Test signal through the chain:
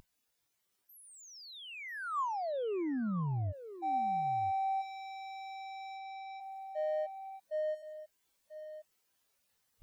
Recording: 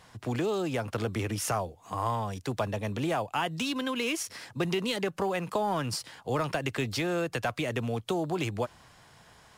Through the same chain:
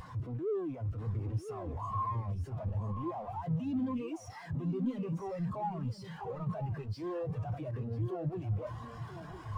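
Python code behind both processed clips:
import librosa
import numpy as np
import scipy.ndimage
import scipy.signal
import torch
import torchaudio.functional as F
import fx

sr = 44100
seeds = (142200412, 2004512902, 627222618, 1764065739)

y = np.sign(x) * np.sqrt(np.mean(np.square(x)))
y = fx.dynamic_eq(y, sr, hz=1100.0, q=4.5, threshold_db=-51.0, ratio=4.0, max_db=3)
y = y + 10.0 ** (-5.0 / 20.0) * np.pad(y, (int(993 * sr / 1000.0), 0))[:len(y)]
y = fx.spectral_expand(y, sr, expansion=2.5)
y = y * librosa.db_to_amplitude(2.5)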